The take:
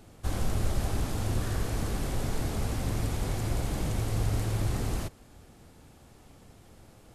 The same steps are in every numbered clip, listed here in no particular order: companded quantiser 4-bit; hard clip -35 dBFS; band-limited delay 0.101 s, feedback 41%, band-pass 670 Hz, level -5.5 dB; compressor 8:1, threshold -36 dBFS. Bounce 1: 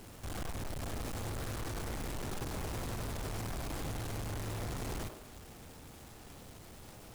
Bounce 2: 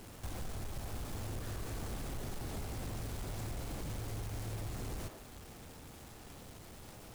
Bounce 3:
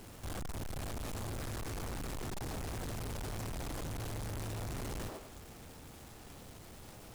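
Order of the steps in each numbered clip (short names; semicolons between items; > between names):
hard clip > compressor > band-limited delay > companded quantiser; compressor > band-limited delay > companded quantiser > hard clip; band-limited delay > hard clip > companded quantiser > compressor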